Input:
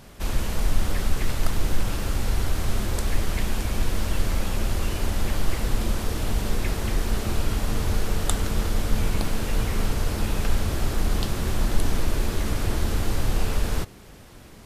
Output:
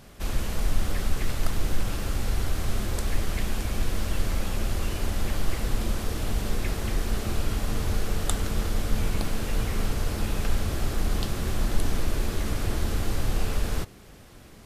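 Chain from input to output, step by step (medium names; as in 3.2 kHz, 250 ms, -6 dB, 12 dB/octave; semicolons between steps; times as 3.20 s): band-stop 930 Hz, Q 19; trim -2.5 dB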